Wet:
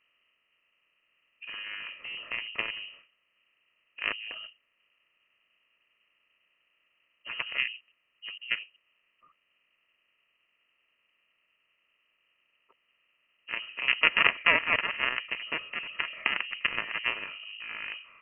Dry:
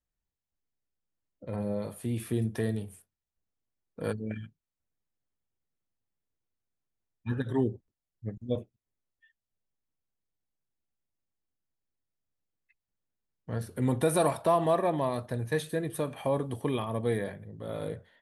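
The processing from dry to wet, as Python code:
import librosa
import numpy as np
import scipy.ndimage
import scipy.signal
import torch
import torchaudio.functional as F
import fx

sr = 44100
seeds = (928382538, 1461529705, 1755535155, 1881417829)

y = fx.bin_compress(x, sr, power=0.6)
y = fx.cheby_harmonics(y, sr, harmonics=(3, 6), levels_db=(-8, -43), full_scale_db=-11.5)
y = fx.notch_comb(y, sr, f0_hz=740.0)
y = fx.freq_invert(y, sr, carrier_hz=3000)
y = y * librosa.db_to_amplitude(8.0)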